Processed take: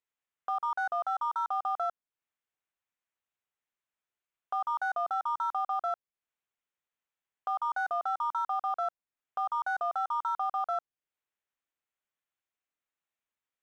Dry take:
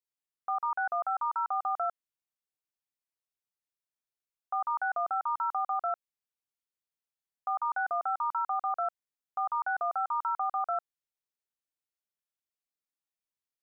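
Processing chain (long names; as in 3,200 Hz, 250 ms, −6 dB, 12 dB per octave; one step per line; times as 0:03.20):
adaptive Wiener filter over 9 samples
one half of a high-frequency compander encoder only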